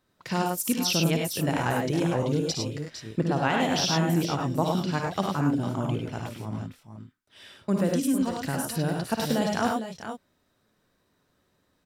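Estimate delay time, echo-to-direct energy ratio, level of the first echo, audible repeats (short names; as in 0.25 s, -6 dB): 56 ms, 0.0 dB, -8.0 dB, 3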